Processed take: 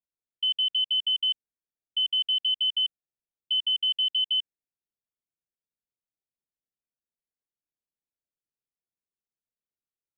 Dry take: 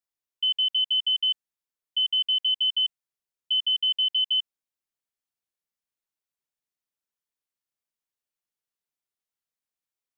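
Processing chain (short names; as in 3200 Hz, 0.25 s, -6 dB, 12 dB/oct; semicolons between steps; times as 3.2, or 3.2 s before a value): Wiener smoothing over 41 samples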